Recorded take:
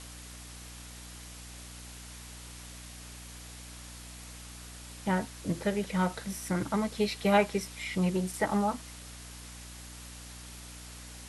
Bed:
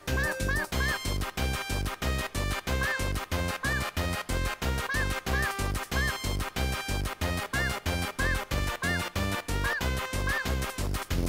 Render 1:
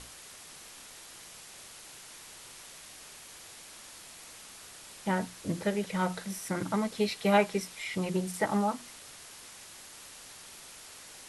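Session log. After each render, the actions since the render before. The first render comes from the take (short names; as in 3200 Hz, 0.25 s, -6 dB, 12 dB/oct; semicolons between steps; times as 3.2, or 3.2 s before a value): notches 60/120/180/240/300 Hz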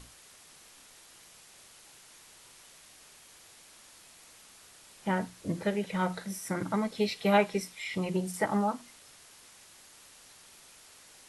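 noise print and reduce 6 dB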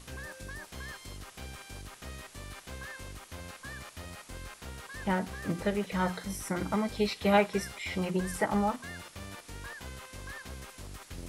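add bed -14.5 dB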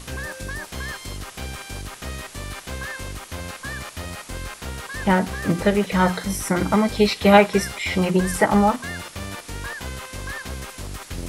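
gain +11.5 dB; limiter -2 dBFS, peak gain reduction 1 dB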